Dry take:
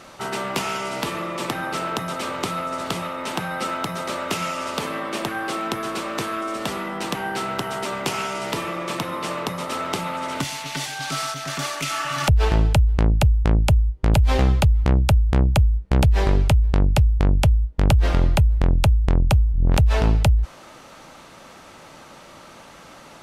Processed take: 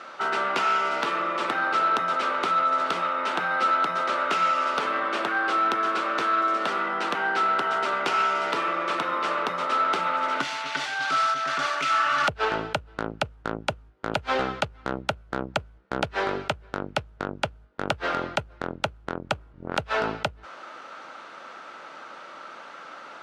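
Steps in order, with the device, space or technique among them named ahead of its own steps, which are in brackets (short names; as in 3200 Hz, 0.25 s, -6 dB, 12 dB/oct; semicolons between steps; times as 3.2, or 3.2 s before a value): intercom (BPF 360–4100 Hz; bell 1400 Hz +10 dB 0.39 oct; soft clip -13.5 dBFS, distortion -18 dB)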